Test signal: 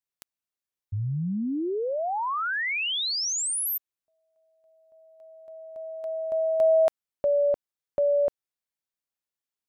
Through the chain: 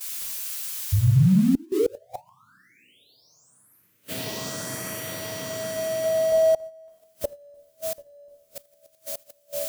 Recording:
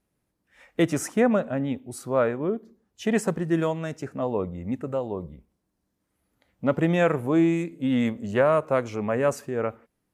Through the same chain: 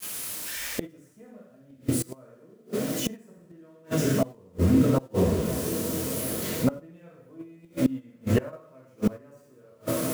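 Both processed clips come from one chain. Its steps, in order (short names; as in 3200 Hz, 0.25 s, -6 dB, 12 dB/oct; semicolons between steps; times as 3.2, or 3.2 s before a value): switching spikes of -25 dBFS; on a send: diffused feedback echo 1.219 s, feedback 66%, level -16 dB; on the sum: non-linear reverb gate 0.3 s falling, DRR -5.5 dB; flipped gate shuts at -12 dBFS, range -26 dB; in parallel at +2 dB: limiter -19 dBFS; on the sum: gate -28 dBFS, range -12 dB; tilt -2 dB/oct; notch 820 Hz, Q 12; gain -5.5 dB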